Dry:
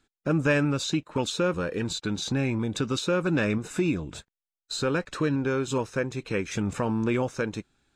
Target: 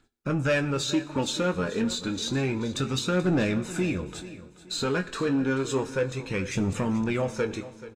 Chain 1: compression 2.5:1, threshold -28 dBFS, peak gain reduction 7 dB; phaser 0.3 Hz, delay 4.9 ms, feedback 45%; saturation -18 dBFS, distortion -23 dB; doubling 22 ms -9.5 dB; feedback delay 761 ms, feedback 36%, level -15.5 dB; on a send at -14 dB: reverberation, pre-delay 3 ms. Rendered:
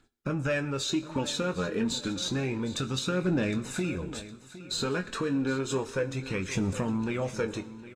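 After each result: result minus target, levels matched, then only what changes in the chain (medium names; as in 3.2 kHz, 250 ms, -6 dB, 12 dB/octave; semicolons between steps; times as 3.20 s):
echo 329 ms late; compression: peak gain reduction +7 dB
change: feedback delay 432 ms, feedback 36%, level -15.5 dB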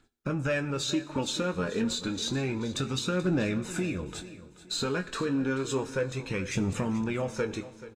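compression: peak gain reduction +7 dB
remove: compression 2.5:1, threshold -28 dBFS, peak gain reduction 7 dB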